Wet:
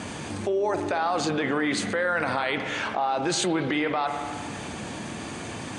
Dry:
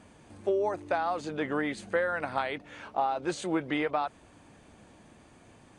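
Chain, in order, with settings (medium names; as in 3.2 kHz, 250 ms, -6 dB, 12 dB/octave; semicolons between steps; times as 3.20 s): Bessel low-pass 6.6 kHz, order 2; treble shelf 3.3 kHz +8.5 dB; peak limiter -25.5 dBFS, peak gain reduction 11 dB; high-pass 87 Hz; peaking EQ 580 Hz -2 dB; spring tank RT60 1.4 s, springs 50/57 ms, chirp 80 ms, DRR 9.5 dB; level flattener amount 50%; trim +8 dB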